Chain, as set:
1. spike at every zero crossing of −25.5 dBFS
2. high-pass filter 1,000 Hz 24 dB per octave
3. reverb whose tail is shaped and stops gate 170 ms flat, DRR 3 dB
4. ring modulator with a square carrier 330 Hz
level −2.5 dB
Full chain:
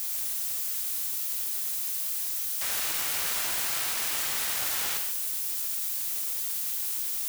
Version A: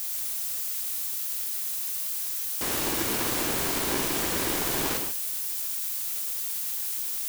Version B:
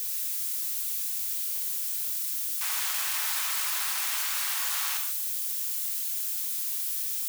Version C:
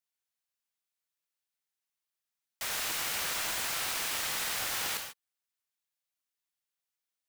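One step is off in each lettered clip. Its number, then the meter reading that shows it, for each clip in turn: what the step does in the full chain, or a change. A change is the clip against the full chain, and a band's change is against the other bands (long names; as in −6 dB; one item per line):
2, 250 Hz band +15.0 dB
4, 500 Hz band −10.5 dB
1, change in crest factor +5.0 dB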